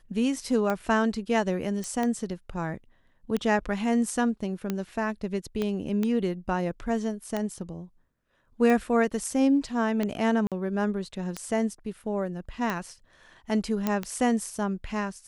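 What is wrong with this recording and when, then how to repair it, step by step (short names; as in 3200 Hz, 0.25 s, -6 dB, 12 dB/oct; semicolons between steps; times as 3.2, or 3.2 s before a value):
tick 45 rpm -15 dBFS
1.84 pop
5.62 pop -17 dBFS
10.47–10.52 gap 47 ms
13.87 pop -12 dBFS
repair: de-click; interpolate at 10.47, 47 ms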